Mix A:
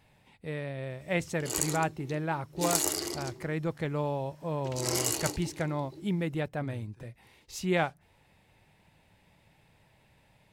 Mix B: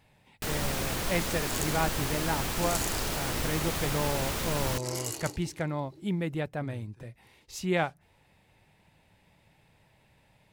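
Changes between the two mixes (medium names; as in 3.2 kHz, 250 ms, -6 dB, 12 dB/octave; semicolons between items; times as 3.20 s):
first sound: unmuted; second sound -6.0 dB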